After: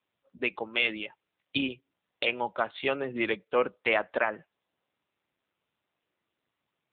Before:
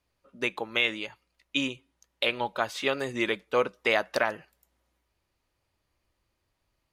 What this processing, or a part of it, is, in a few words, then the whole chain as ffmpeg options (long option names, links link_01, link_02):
mobile call with aggressive noise cancelling: -af "highpass=frequency=130:width=0.5412,highpass=frequency=130:width=1.3066,afftdn=noise_reduction=13:noise_floor=-44" -ar 8000 -c:a libopencore_amrnb -b:a 7950